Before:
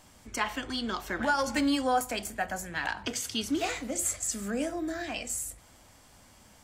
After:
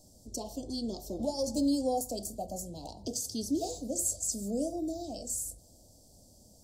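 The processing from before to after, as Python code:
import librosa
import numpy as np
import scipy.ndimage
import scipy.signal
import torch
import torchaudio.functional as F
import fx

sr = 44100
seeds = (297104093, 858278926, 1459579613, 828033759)

y = scipy.signal.sosfilt(scipy.signal.ellip(3, 1.0, 80, [640.0, 4700.0], 'bandstop', fs=sr, output='sos'), x)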